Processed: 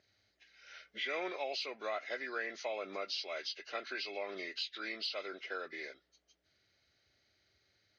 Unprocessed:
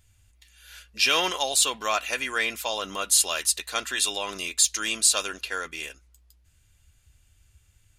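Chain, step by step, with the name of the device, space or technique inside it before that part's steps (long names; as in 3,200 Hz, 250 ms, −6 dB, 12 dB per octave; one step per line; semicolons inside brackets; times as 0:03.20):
hearing aid with frequency lowering (hearing-aid frequency compression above 1,300 Hz 1.5 to 1; downward compressor 2 to 1, threshold −40 dBFS, peak gain reduction 13 dB; loudspeaker in its box 280–6,900 Hz, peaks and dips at 380 Hz +6 dB, 610 Hz +6 dB, 1,000 Hz −9 dB, 2,600 Hz −6 dB, 3,800 Hz −4 dB, 5,500 Hz −8 dB)
level −2 dB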